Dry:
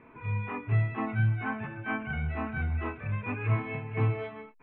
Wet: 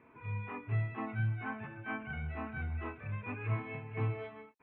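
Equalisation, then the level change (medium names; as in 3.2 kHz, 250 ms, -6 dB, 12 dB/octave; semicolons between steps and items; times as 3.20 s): high-pass 52 Hz; peaking EQ 180 Hz -2 dB; -6.5 dB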